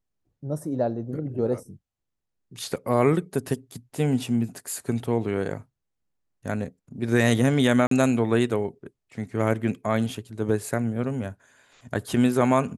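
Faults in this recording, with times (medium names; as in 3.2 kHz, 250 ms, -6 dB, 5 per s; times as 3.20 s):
7.87–7.91 s: dropout 43 ms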